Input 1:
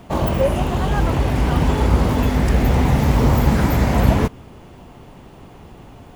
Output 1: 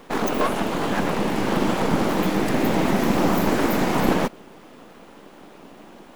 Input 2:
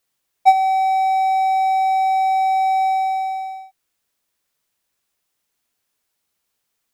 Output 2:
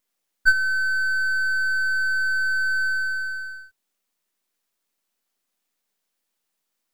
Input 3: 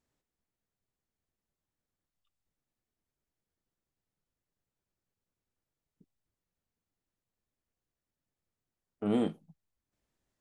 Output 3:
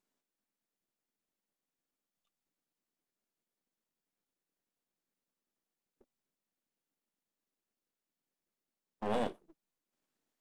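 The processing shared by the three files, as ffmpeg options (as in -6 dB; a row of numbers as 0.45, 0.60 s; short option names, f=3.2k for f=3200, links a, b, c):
-af "aeval=exprs='abs(val(0))':c=same,lowshelf=f=150:t=q:w=1.5:g=-11"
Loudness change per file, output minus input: -4.0, -4.0, -5.0 LU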